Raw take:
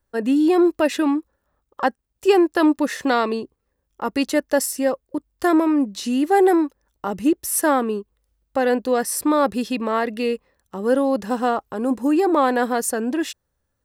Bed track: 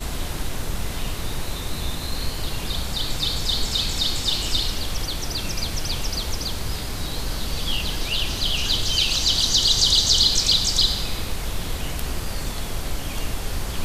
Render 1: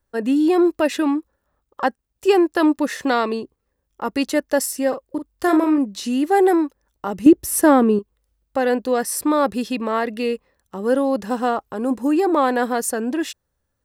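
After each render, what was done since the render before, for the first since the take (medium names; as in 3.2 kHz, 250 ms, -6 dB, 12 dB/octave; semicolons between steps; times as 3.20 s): 4.88–5.78 s: doubling 42 ms -8 dB; 7.26–7.99 s: bass shelf 450 Hz +11.5 dB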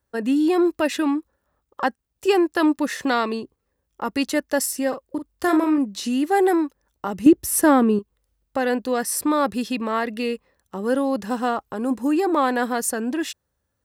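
high-pass 46 Hz; dynamic bell 510 Hz, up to -4 dB, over -29 dBFS, Q 0.87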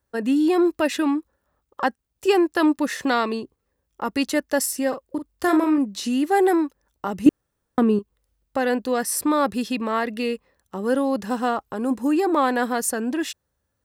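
7.29–7.78 s: room tone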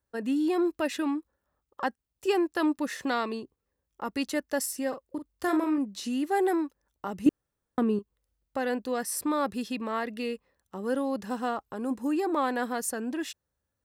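trim -7.5 dB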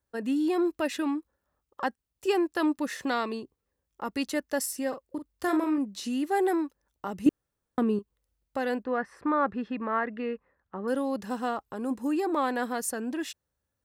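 8.83–10.88 s: resonant low-pass 1.6 kHz, resonance Q 1.8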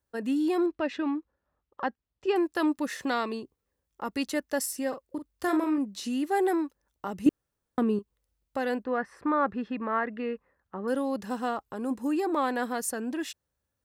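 0.66–2.36 s: distance through air 190 m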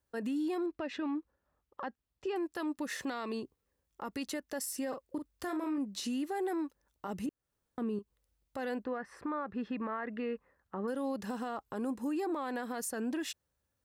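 compression, threshold -30 dBFS, peak gain reduction 13.5 dB; peak limiter -28.5 dBFS, peak gain reduction 9 dB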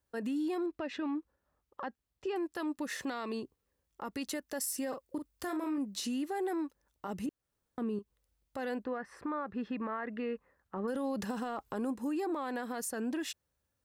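4.25–6.06 s: treble shelf 6.7 kHz +4.5 dB; 10.76–11.93 s: transient shaper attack +3 dB, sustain +7 dB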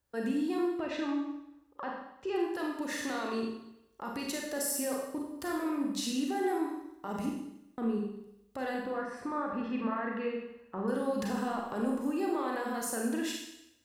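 Schroeder reverb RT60 0.84 s, combs from 31 ms, DRR -1 dB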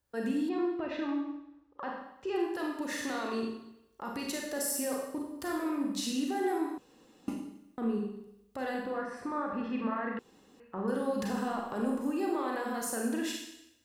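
0.49–1.83 s: distance through air 150 m; 6.78–7.28 s: room tone; 10.19–10.60 s: room tone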